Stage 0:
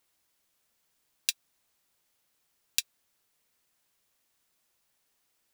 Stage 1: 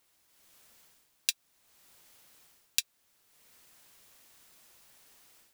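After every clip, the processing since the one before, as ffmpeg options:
-af "dynaudnorm=f=270:g=3:m=11dB,alimiter=limit=-5dB:level=0:latency=1:release=304,volume=3.5dB"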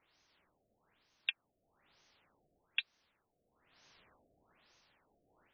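-af "tremolo=f=0.72:d=0.55,lowpass=9.3k,afftfilt=real='re*lt(b*sr/1024,720*pow(6700/720,0.5+0.5*sin(2*PI*1.1*pts/sr)))':imag='im*lt(b*sr/1024,720*pow(6700/720,0.5+0.5*sin(2*PI*1.1*pts/sr)))':win_size=1024:overlap=0.75,volume=2dB"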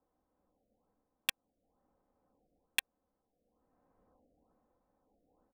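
-filter_complex "[0:a]aecho=1:1:3.9:0.55,acrossover=split=110|950[a][b][c];[c]acrusher=bits=3:mix=0:aa=0.000001[d];[a][b][d]amix=inputs=3:normalize=0"

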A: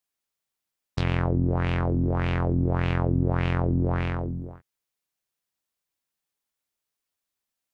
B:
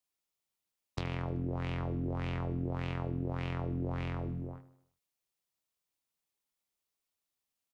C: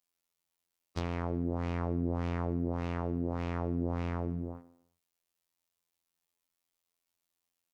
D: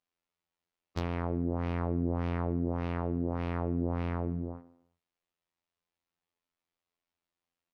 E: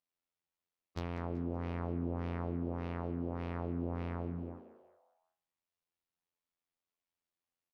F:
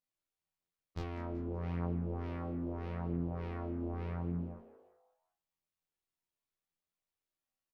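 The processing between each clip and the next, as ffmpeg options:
-filter_complex "[0:a]equalizer=f=1.6k:w=3.9:g=-5,acrossover=split=250|3000[a][b][c];[a]acompressor=threshold=-34dB:ratio=4[d];[b]acompressor=threshold=-35dB:ratio=4[e];[c]acompressor=threshold=-47dB:ratio=4[f];[d][e][f]amix=inputs=3:normalize=0,aecho=1:1:76|152|228|304|380:0.178|0.0942|0.05|0.0265|0.014,volume=-3dB"
-af "afftfilt=real='hypot(re,im)*cos(PI*b)':imag='0':win_size=2048:overlap=0.75,volume=5dB"
-af "adynamicsmooth=sensitivity=5.5:basefreq=3.7k,volume=1.5dB"
-filter_complex "[0:a]asplit=5[a][b][c][d][e];[b]adelay=190,afreqshift=140,volume=-16dB[f];[c]adelay=380,afreqshift=280,volume=-23.5dB[g];[d]adelay=570,afreqshift=420,volume=-31.1dB[h];[e]adelay=760,afreqshift=560,volume=-38.6dB[i];[a][f][g][h][i]amix=inputs=5:normalize=0,volume=-6dB"
-filter_complex "[0:a]lowshelf=f=130:g=9,flanger=delay=19.5:depth=6.8:speed=0.4,asplit=2[a][b];[b]adelay=18,volume=-8dB[c];[a][c]amix=inputs=2:normalize=0"

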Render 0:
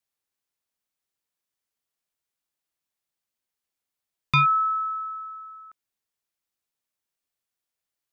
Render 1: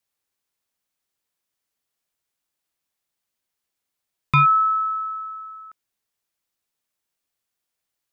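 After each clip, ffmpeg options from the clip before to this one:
-filter_complex "[0:a]acrossover=split=2600[a][b];[b]acompressor=threshold=-42dB:ratio=4:attack=1:release=60[c];[a][c]amix=inputs=2:normalize=0,volume=4.5dB"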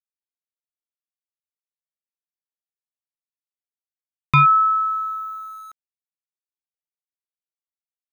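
-af "aeval=exprs='val(0)*gte(abs(val(0)),0.00447)':c=same,volume=2dB"

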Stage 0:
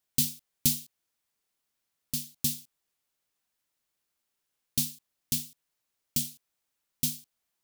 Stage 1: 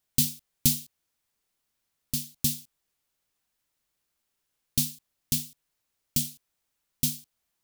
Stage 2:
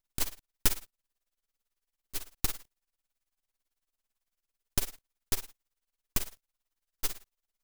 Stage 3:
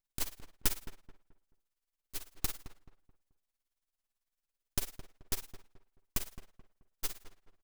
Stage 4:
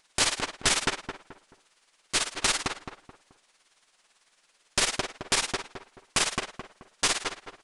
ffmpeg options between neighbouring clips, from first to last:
-af "lowshelf=f=120:g=7,volume=2dB"
-af "aeval=exprs='abs(val(0))':c=same,tremolo=f=18:d=0.91"
-filter_complex "[0:a]asplit=2[a][b];[b]adelay=216,lowpass=f=1.6k:p=1,volume=-11.5dB,asplit=2[c][d];[d]adelay=216,lowpass=f=1.6k:p=1,volume=0.35,asplit=2[e][f];[f]adelay=216,lowpass=f=1.6k:p=1,volume=0.35,asplit=2[g][h];[h]adelay=216,lowpass=f=1.6k:p=1,volume=0.35[i];[a][c][e][g][i]amix=inputs=5:normalize=0,volume=-4.5dB"
-filter_complex "[0:a]asplit=2[a][b];[b]highpass=f=720:p=1,volume=34dB,asoftclip=type=tanh:threshold=-11.5dB[c];[a][c]amix=inputs=2:normalize=0,lowpass=f=4.5k:p=1,volume=-6dB,aresample=22050,aresample=44100,volume=3.5dB"

